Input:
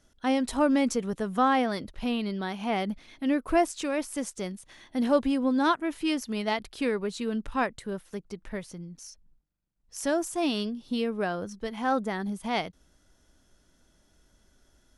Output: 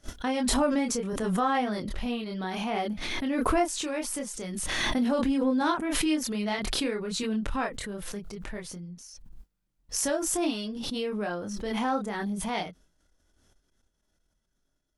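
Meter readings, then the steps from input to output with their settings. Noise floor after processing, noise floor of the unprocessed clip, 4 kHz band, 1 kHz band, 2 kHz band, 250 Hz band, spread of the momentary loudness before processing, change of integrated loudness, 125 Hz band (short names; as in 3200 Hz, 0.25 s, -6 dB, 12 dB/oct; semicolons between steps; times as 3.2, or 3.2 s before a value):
-76 dBFS, -66 dBFS, +3.5 dB, -1.5 dB, 0.0 dB, -1.0 dB, 14 LU, -0.5 dB, +2.0 dB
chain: chorus voices 4, 0.21 Hz, delay 26 ms, depth 3.5 ms; expander -53 dBFS; backwards sustainer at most 22 dB/s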